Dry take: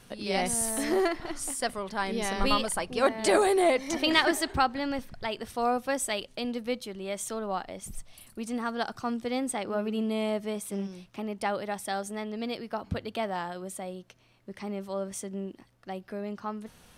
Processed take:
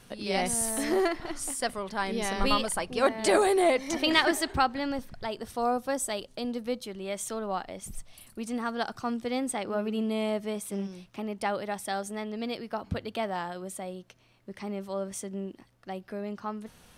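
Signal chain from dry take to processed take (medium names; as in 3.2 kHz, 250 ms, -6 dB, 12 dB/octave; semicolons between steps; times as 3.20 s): 4.90–6.83 s: dynamic bell 2.4 kHz, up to -7 dB, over -49 dBFS, Q 1.3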